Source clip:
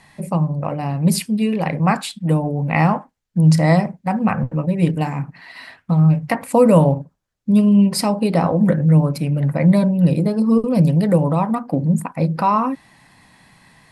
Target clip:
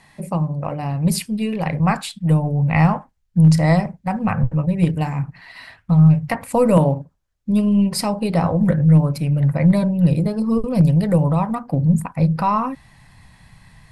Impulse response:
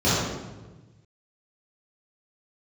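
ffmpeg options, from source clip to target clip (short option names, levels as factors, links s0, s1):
-af "aeval=exprs='0.891*(cos(1*acos(clip(val(0)/0.891,-1,1)))-cos(1*PI/2))+0.00501*(cos(4*acos(clip(val(0)/0.891,-1,1)))-cos(4*PI/2))':c=same,asubboost=boost=10:cutoff=100,volume=0.841"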